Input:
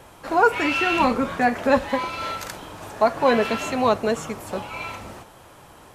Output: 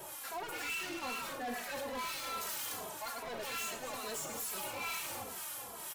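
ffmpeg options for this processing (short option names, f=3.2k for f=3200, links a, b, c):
-filter_complex "[0:a]areverse,acompressor=threshold=-30dB:ratio=5,areverse,aemphasis=mode=production:type=riaa,asplit=2[a][b];[b]aecho=0:1:102|212.8:0.355|0.398[c];[a][c]amix=inputs=2:normalize=0,acontrast=53,acrossover=split=1000[d][e];[d]aeval=exprs='val(0)*(1-0.7/2+0.7/2*cos(2*PI*2.1*n/s))':c=same[f];[e]aeval=exprs='val(0)*(1-0.7/2-0.7/2*cos(2*PI*2.1*n/s))':c=same[g];[f][g]amix=inputs=2:normalize=0,asoftclip=type=tanh:threshold=-35dB,asplit=2[h][i];[i]adelay=2.7,afreqshift=-2.4[j];[h][j]amix=inputs=2:normalize=1"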